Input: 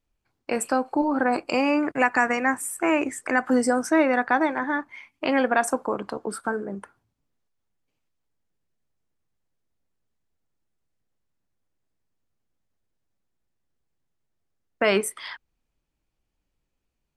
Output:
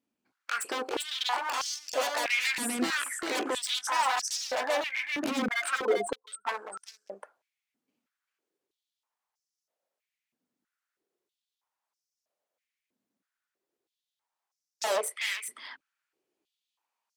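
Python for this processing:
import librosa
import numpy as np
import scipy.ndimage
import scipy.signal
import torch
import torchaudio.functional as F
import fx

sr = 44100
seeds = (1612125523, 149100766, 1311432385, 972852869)

y = fx.spec_expand(x, sr, power=3.6, at=(5.42, 6.49))
y = 10.0 ** (-24.0 / 20.0) * (np.abs((y / 10.0 ** (-24.0 / 20.0) + 3.0) % 4.0 - 2.0) - 1.0)
y = y + 10.0 ** (-4.0 / 20.0) * np.pad(y, (int(395 * sr / 1000.0), 0))[:len(y)]
y = fx.filter_held_highpass(y, sr, hz=3.1, low_hz=240.0, high_hz=5500.0)
y = F.gain(torch.from_numpy(y), -3.5).numpy()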